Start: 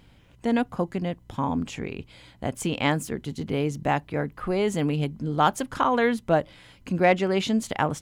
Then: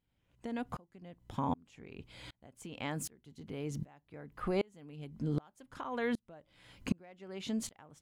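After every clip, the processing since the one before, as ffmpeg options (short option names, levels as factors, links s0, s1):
-af "acompressor=threshold=0.0398:ratio=6,aeval=exprs='val(0)*pow(10,-33*if(lt(mod(-1.3*n/s,1),2*abs(-1.3)/1000),1-mod(-1.3*n/s,1)/(2*abs(-1.3)/1000),(mod(-1.3*n/s,1)-2*abs(-1.3)/1000)/(1-2*abs(-1.3)/1000))/20)':c=same,volume=1.33"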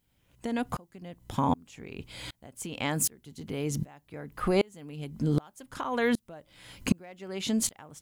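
-af "highshelf=f=5900:g=10.5,volume=2.37"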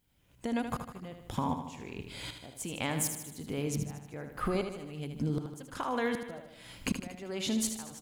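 -filter_complex "[0:a]acompressor=threshold=0.0447:ratio=6,asplit=2[s0][s1];[s1]aecho=0:1:77|154|231|308|385|462|539:0.398|0.231|0.134|0.0777|0.0451|0.0261|0.0152[s2];[s0][s2]amix=inputs=2:normalize=0,volume=0.891"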